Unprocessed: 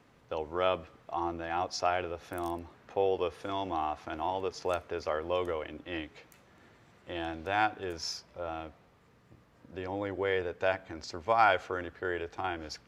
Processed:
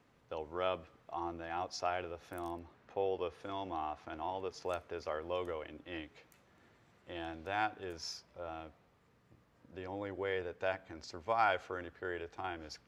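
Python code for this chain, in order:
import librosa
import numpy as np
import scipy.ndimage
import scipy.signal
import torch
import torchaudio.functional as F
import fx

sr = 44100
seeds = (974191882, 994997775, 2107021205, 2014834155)

y = fx.high_shelf(x, sr, hz=7600.0, db=-7.0, at=(2.41, 4.49))
y = F.gain(torch.from_numpy(y), -6.5).numpy()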